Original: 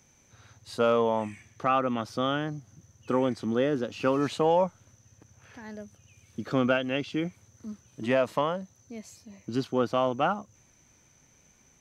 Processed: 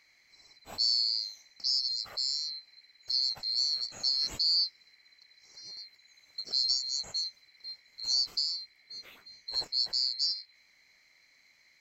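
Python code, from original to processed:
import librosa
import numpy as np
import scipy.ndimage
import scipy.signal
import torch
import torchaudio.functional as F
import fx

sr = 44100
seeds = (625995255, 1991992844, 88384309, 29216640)

y = fx.band_swap(x, sr, width_hz=4000)
y = fx.high_shelf(y, sr, hz=3900.0, db=-8.0)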